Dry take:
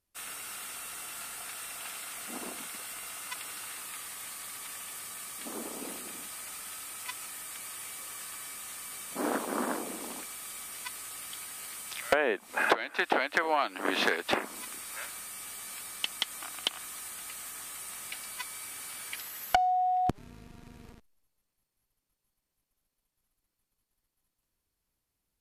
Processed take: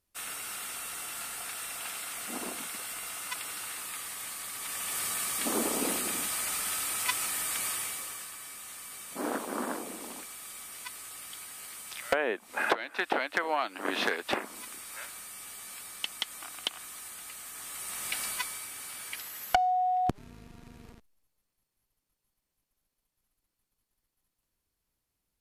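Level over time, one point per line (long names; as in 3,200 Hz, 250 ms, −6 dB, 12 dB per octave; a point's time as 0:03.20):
0:04.53 +2.5 dB
0:05.03 +9.5 dB
0:07.69 +9.5 dB
0:08.34 −2 dB
0:17.47 −2 dB
0:18.24 +8 dB
0:18.69 0 dB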